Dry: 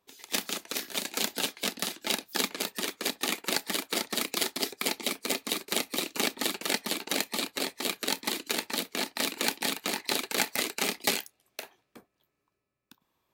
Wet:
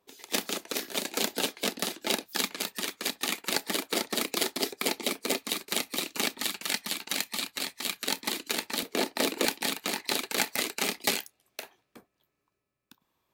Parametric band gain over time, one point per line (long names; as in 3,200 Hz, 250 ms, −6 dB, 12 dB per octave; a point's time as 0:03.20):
parametric band 430 Hz 1.8 octaves
+5 dB
from 0:02.26 −3.5 dB
from 0:03.54 +3.5 dB
from 0:05.39 −3 dB
from 0:06.41 −10 dB
from 0:08.07 −1.5 dB
from 0:08.83 +8.5 dB
from 0:09.45 −0.5 dB